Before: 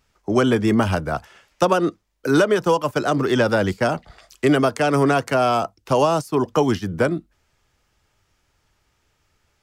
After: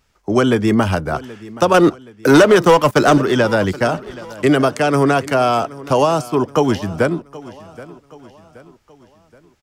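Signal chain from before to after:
0:01.74–0:03.18: leveller curve on the samples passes 2
repeating echo 775 ms, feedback 46%, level −19 dB
level +3 dB

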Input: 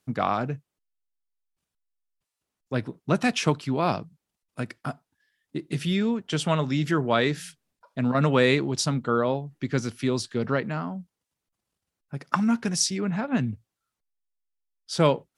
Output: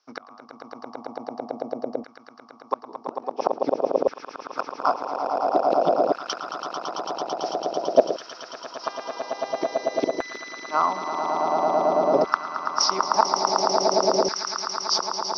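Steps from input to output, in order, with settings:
running median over 5 samples
mains-hum notches 50/100/150/200/250 Hz
treble cut that deepens with the level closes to 2,400 Hz, closed at −21.5 dBFS
drawn EQ curve 100 Hz 0 dB, 290 Hz +12 dB, 470 Hz +10 dB, 1,100 Hz +2 dB, 1,700 Hz −17 dB, 3,700 Hz −9 dB, 5,500 Hz +9 dB, 7,900 Hz −25 dB
in parallel at −2 dB: brickwall limiter −11 dBFS, peak gain reduction 9.5 dB
on the sum: gate with flip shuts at −7 dBFS, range −34 dB
0:08.83–0:10.03: hum with harmonics 400 Hz, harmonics 15, −48 dBFS −5 dB per octave
on a send: echo that builds up and dies away 111 ms, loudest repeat 8, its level −8 dB
on the sum: auto-filter high-pass saw down 0.49 Hz 540–1,600 Hz
level +5.5 dB

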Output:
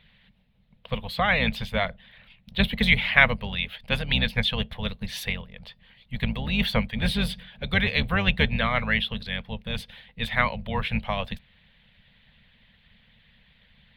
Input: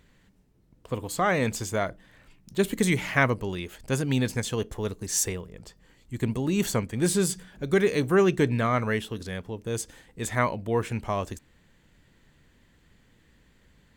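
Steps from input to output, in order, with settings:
sub-octave generator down 2 octaves, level +1 dB
drawn EQ curve 120 Hz 0 dB, 220 Hz +7 dB, 330 Hz −25 dB, 490 Hz +2 dB, 830 Hz +3 dB, 1,300 Hz +1 dB, 2,200 Hz +11 dB, 3,700 Hz +14 dB, 7,100 Hz −25 dB, 11,000 Hz −8 dB
harmonic and percussive parts rebalanced percussive +9 dB
level −8.5 dB

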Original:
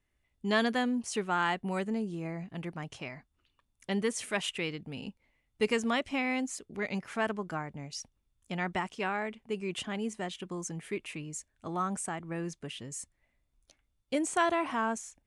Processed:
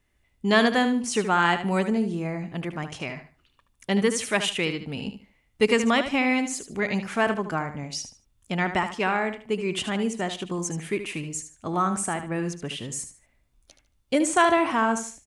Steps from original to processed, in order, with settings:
repeating echo 75 ms, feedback 25%, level −10 dB
level +8 dB

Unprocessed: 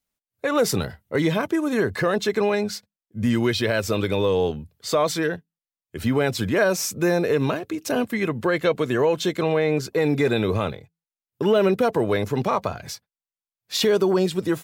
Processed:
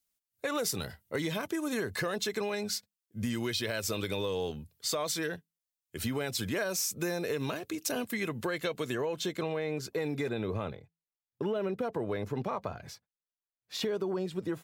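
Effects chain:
high-shelf EQ 3,000 Hz +11.5 dB, from 0:08.95 +3.5 dB, from 0:10.29 −7 dB
downward compressor, threshold −21 dBFS, peak gain reduction 8.5 dB
level −8 dB

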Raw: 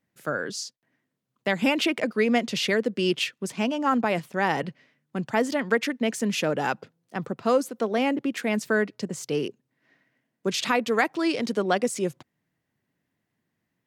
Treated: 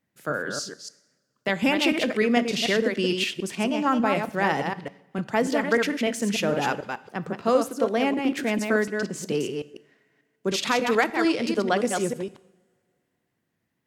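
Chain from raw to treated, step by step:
delay that plays each chunk backwards 148 ms, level −5 dB
coupled-rooms reverb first 0.75 s, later 2.6 s, from −24 dB, DRR 15 dB

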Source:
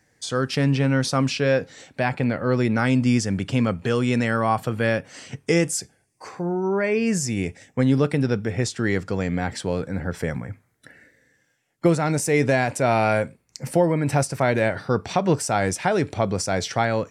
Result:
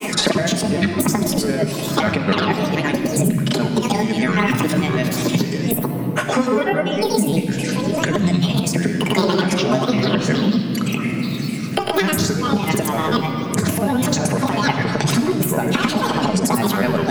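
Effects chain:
pitch shifter gated in a rhythm +9.5 semitones, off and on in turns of 336 ms
low shelf with overshoot 130 Hz −12.5 dB, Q 3
compressor whose output falls as the input rises −24 dBFS, ratio −0.5
granular cloud, pitch spread up and down by 7 semitones
rectangular room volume 3,200 cubic metres, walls mixed, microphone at 1.4 metres
multiband upward and downward compressor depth 100%
level +5.5 dB

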